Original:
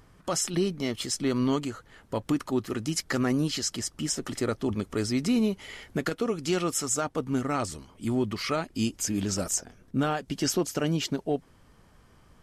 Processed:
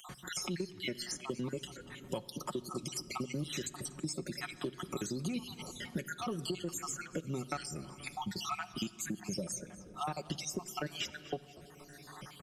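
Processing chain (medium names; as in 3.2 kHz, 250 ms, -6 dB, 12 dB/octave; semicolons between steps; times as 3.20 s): random holes in the spectrogram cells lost 61%; high-pass 60 Hz; comb 5.5 ms, depth 65%; in parallel at -10 dB: saturation -25.5 dBFS, distortion -10 dB; on the sum: compression, threshold -28 dBFS, peak gain reduction 10.5 dB; frequency-shifting echo 239 ms, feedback 35%, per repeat -70 Hz, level -22 dB; simulated room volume 3300 m³, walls mixed, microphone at 0.38 m; three bands compressed up and down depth 70%; trim -5.5 dB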